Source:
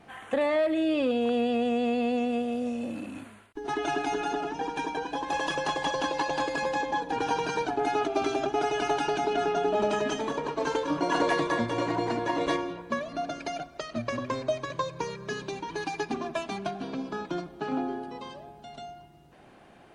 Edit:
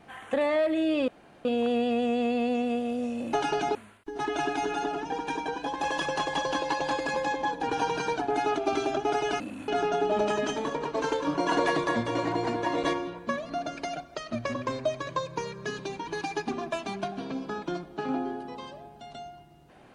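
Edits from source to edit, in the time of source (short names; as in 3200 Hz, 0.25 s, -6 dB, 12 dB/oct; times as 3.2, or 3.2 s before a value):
1.08 insert room tone 0.37 s
2.96–3.24 swap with 8.89–9.31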